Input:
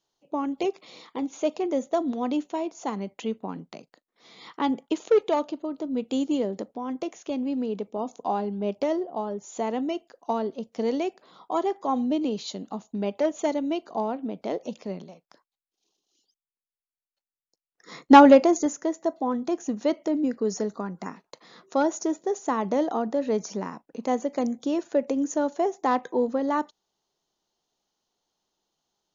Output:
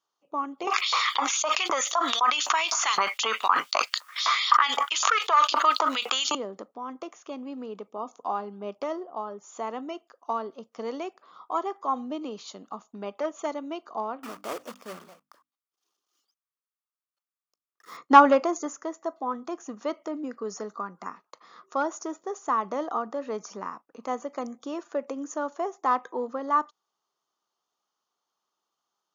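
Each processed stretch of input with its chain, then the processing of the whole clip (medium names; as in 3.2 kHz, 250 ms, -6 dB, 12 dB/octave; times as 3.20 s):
0.67–6.35 s: LFO high-pass saw up 3.9 Hz 880–4800 Hz + level flattener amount 100%
14.23–17.98 s: block-companded coder 3-bit + hum notches 50/100/150/200/250/300 Hz
whole clip: high-pass 380 Hz 6 dB/octave; peaking EQ 1.2 kHz +14.5 dB 0.47 oct; band-stop 4 kHz, Q 14; trim -5 dB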